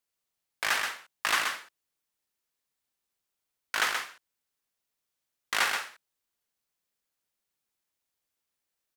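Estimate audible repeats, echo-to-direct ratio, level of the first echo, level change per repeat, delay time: 1, −5.5 dB, −5.5 dB, repeats not evenly spaced, 128 ms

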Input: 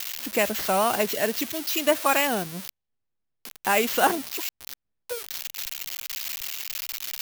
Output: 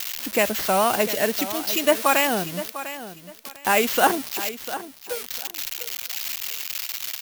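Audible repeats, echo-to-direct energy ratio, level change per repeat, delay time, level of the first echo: 2, −13.0 dB, −13.0 dB, 699 ms, −13.0 dB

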